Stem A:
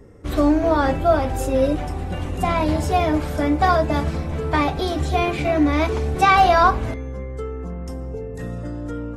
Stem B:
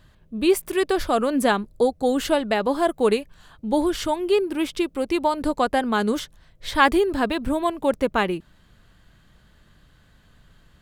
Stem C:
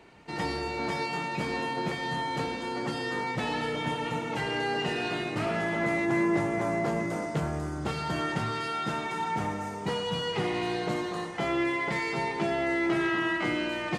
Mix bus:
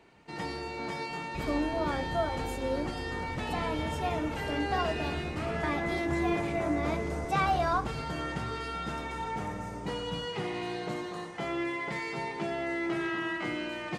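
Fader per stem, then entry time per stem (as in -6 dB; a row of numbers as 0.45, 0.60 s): -14.0 dB, off, -5.0 dB; 1.10 s, off, 0.00 s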